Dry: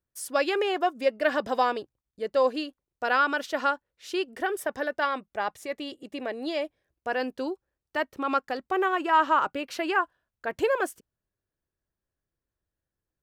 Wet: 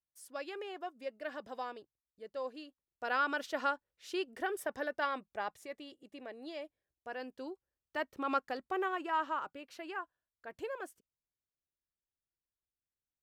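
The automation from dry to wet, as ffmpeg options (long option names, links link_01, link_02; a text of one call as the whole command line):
ffmpeg -i in.wav -af "afade=type=in:start_time=2.59:duration=0.75:silence=0.334965,afade=type=out:start_time=5.29:duration=0.58:silence=0.473151,afade=type=in:start_time=7.32:duration=1.01:silence=0.421697,afade=type=out:start_time=8.33:duration=1.19:silence=0.334965" out.wav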